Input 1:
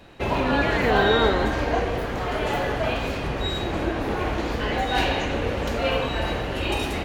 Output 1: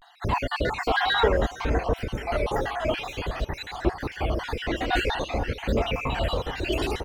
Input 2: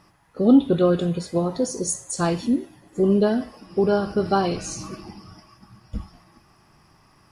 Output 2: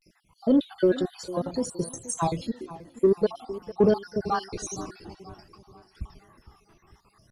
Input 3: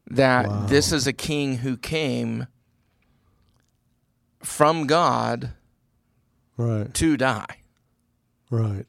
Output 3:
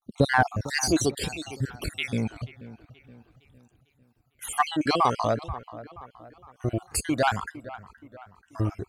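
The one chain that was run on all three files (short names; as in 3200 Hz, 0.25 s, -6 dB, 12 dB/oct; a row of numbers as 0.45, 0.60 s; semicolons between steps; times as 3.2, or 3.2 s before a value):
random spectral dropouts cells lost 56%; phaser 0.52 Hz, delay 3.2 ms, feedback 49%; dark delay 0.466 s, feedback 45%, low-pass 2300 Hz, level -16.5 dB; vibrato 0.33 Hz 67 cents; in parallel at -5.5 dB: soft clip -15 dBFS; on the sum: match loudness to -27 LUFS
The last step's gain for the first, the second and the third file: -4.0, -6.0, -4.0 dB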